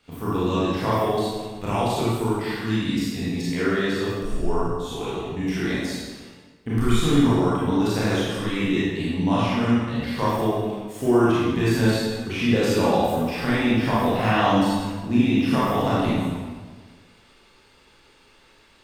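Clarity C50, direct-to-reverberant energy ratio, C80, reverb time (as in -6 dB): -4.5 dB, -9.5 dB, -0.5 dB, 1.5 s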